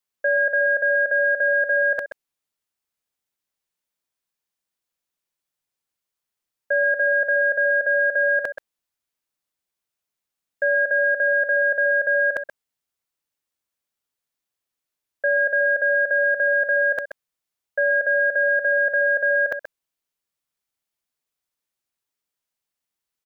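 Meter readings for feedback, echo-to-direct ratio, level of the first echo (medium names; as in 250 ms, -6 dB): no regular repeats, -10.0 dB, -10.0 dB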